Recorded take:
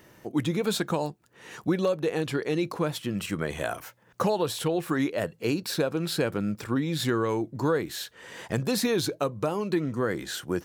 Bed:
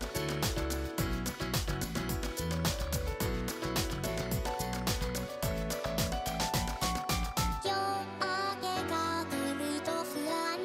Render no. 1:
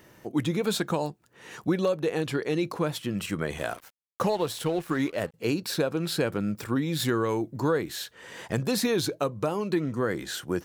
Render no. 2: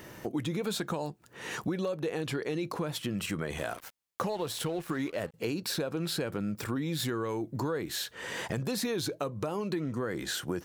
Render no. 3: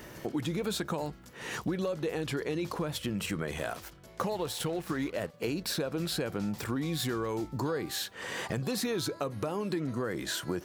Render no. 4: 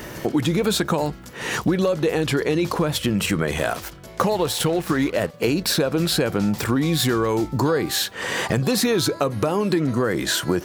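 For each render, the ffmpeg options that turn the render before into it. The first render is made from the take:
-filter_complex "[0:a]asettb=1/sr,asplit=3[a][b][c];[a]atrim=end=3.584[d];[b]atrim=start=3.58:end=5.34,asetpts=PTS-STARTPTS,afade=t=in:d=0.004:c=qsin,afade=t=out:st=1.756:d=0.004:c=qsin,aeval=exprs='sgn(val(0))*max(abs(val(0))-0.00668,0)':c=same[e];[c]atrim=start=5.336[f];[d][e]acrossfade=d=0.004:c1=hsin:c2=qsin[g];[g][f]acrossfade=d=0.004:c1=qsin:c2=hsin,asettb=1/sr,asplit=3[h][i][j];[h]atrim=end=6.554[k];[i]atrim=start=6.55:end=7.6,asetpts=PTS-STARTPTS,afade=t=in:d=0.004:c=qsin,afade=t=out:st=1.046:d=0.004:c=qsin,highshelf=f=12k:g=8.5[l];[j]atrim=start=7.596[m];[k][l]acrossfade=d=0.004:c1=hsin:c2=qsin[n];[n][m]acrossfade=d=0.004:c1=qsin:c2=hsin"
-filter_complex "[0:a]asplit=2[a][b];[b]alimiter=limit=-23.5dB:level=0:latency=1:release=13,volume=1.5dB[c];[a][c]amix=inputs=2:normalize=0,acompressor=threshold=-33dB:ratio=3"
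-filter_complex "[1:a]volume=-18.5dB[a];[0:a][a]amix=inputs=2:normalize=0"
-af "volume=12dB"

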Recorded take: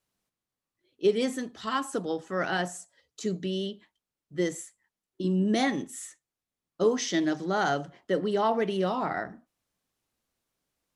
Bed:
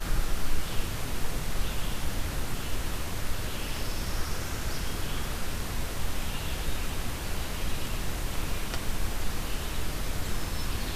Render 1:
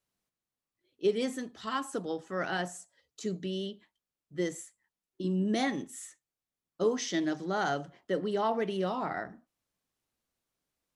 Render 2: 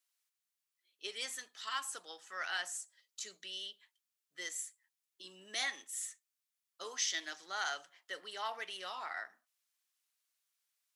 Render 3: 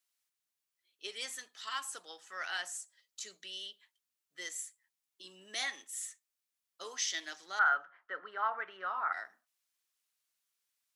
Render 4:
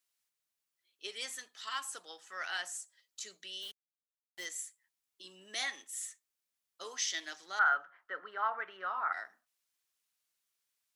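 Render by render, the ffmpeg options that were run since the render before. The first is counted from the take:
-af "volume=-4dB"
-af "highpass=1.5k,highshelf=f=4.6k:g=5"
-filter_complex "[0:a]asettb=1/sr,asplit=3[a][b][c];[a]atrim=end=7.594[d];[b]atrim=start=7.59:end=9.13,asetpts=PTS-STARTPTS,afade=t=in:d=0.004:c=qsin,afade=t=out:st=1.536:d=0.004:c=qsin,lowpass=f=1.4k:t=q:w=4.6[e];[c]atrim=start=9.126[f];[d][e]acrossfade=d=0.004:c1=hsin:c2=qsin[g];[g][f]acrossfade=d=0.004:c1=qsin:c2=hsin"
-filter_complex "[0:a]asplit=3[a][b][c];[a]afade=t=out:st=3.61:d=0.02[d];[b]acrusher=bits=7:mix=0:aa=0.5,afade=t=in:st=3.61:d=0.02,afade=t=out:st=4.44:d=0.02[e];[c]afade=t=in:st=4.44:d=0.02[f];[d][e][f]amix=inputs=3:normalize=0"

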